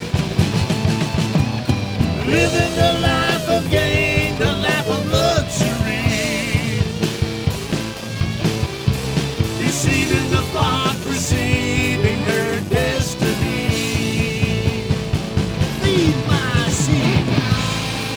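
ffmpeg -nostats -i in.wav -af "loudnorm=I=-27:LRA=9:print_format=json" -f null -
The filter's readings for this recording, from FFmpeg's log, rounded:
"input_i" : "-18.5",
"input_tp" : "-2.8",
"input_lra" : "2.0",
"input_thresh" : "-28.5",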